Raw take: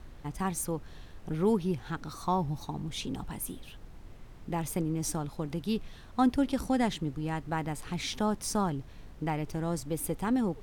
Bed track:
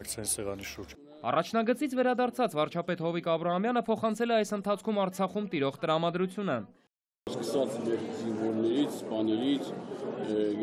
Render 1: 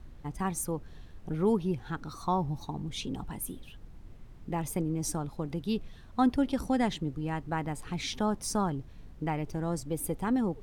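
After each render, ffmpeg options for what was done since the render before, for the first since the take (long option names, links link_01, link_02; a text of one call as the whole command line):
ffmpeg -i in.wav -af "afftdn=noise_reduction=6:noise_floor=-49" out.wav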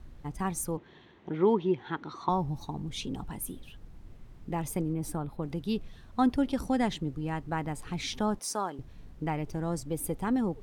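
ffmpeg -i in.wav -filter_complex "[0:a]asettb=1/sr,asplit=3[link_01][link_02][link_03];[link_01]atrim=end=0.774[link_04];[link_02]atrim=start=0.77:end=2.29,asetpts=PTS-STARTPTS,afade=type=in:duration=0.004:curve=qsin,afade=type=out:start_time=1.516:duration=0.004:curve=qsin,highpass=180,equalizer=frequency=360:width_type=q:width=4:gain=8,equalizer=frequency=950:width_type=q:width=4:gain=7,equalizer=frequency=2000:width_type=q:width=4:gain=8,equalizer=frequency=3300:width_type=q:width=4:gain=6,equalizer=frequency=5000:width_type=q:width=4:gain=-9,lowpass=frequency=5400:width=0.5412,lowpass=frequency=5400:width=1.3066[link_05];[link_03]atrim=start=2.286[link_06];[link_04][link_05]acrossfade=duration=0.004:curve1=hsin:curve2=qsin[link_07];[link_07][link_06]acrossfade=duration=0.004:curve1=qsin:curve2=hsin,asettb=1/sr,asplit=3[link_08][link_09][link_10];[link_08]atrim=end=4.934[link_11];[link_09]atrim=start=4.93:end=5.43,asetpts=PTS-STARTPTS,afade=type=in:duration=0.004:curve=qsin,afade=type=out:start_time=0.496:duration=0.004:curve=qsin,equalizer=frequency=6100:width=1.3:gain=-14[link_12];[link_10]atrim=start=5.426[link_13];[link_11][link_12]acrossfade=duration=0.004:curve1=hsin:curve2=qsin[link_14];[link_14][link_13]acrossfade=duration=0.004:curve1=qsin:curve2=hsin,asettb=1/sr,asplit=3[link_15][link_16][link_17];[link_15]atrim=end=8.394[link_18];[link_16]atrim=start=8.39:end=8.79,asetpts=PTS-STARTPTS,afade=type=in:duration=0.004:curve=qsin,afade=type=out:start_time=0.396:duration=0.004:curve=qsin,highpass=400[link_19];[link_17]atrim=start=8.786[link_20];[link_18][link_19]acrossfade=duration=0.004:curve1=hsin:curve2=qsin[link_21];[link_21][link_20]acrossfade=duration=0.004:curve1=qsin:curve2=hsin" out.wav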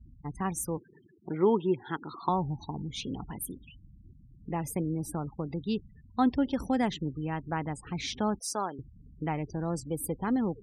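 ffmpeg -i in.wav -af "afftfilt=real='re*gte(hypot(re,im),0.00631)':imag='im*gte(hypot(re,im),0.00631)':win_size=1024:overlap=0.75,highpass=47" out.wav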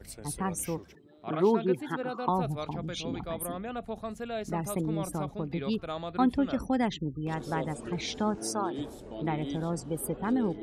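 ffmpeg -i in.wav -i bed.wav -filter_complex "[1:a]volume=-8.5dB[link_01];[0:a][link_01]amix=inputs=2:normalize=0" out.wav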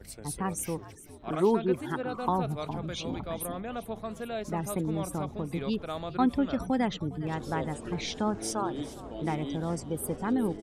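ffmpeg -i in.wav -filter_complex "[0:a]asplit=7[link_01][link_02][link_03][link_04][link_05][link_06][link_07];[link_02]adelay=409,afreqshift=-75,volume=-17dB[link_08];[link_03]adelay=818,afreqshift=-150,volume=-21.4dB[link_09];[link_04]adelay=1227,afreqshift=-225,volume=-25.9dB[link_10];[link_05]adelay=1636,afreqshift=-300,volume=-30.3dB[link_11];[link_06]adelay=2045,afreqshift=-375,volume=-34.7dB[link_12];[link_07]adelay=2454,afreqshift=-450,volume=-39.2dB[link_13];[link_01][link_08][link_09][link_10][link_11][link_12][link_13]amix=inputs=7:normalize=0" out.wav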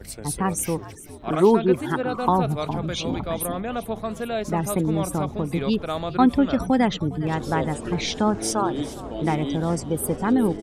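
ffmpeg -i in.wav -af "volume=8dB" out.wav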